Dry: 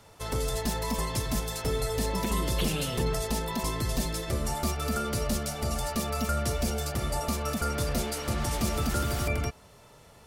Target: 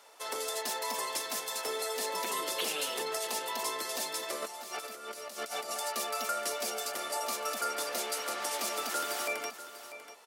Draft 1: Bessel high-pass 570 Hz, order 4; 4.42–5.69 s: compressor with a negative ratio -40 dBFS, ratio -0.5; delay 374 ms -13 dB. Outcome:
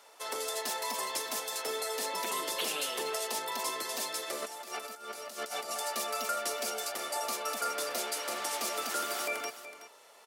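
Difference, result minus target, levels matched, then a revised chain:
echo 269 ms early
Bessel high-pass 570 Hz, order 4; 4.42–5.69 s: compressor with a negative ratio -40 dBFS, ratio -0.5; delay 643 ms -13 dB

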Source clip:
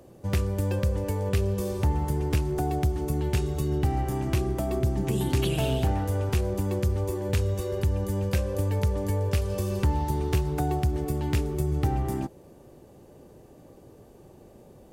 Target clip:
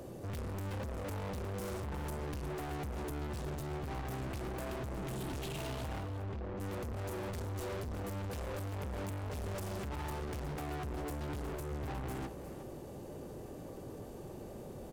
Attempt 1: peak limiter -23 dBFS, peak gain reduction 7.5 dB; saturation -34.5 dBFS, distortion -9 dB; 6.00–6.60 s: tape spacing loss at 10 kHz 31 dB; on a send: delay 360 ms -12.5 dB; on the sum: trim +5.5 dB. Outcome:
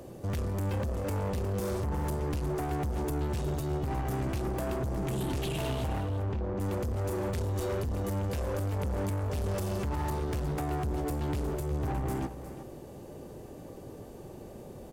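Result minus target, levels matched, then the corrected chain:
saturation: distortion -4 dB
peak limiter -23 dBFS, peak gain reduction 7.5 dB; saturation -44 dBFS, distortion -5 dB; 6.00–6.60 s: tape spacing loss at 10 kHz 31 dB; on a send: delay 360 ms -12.5 dB; on the sum: trim +5.5 dB

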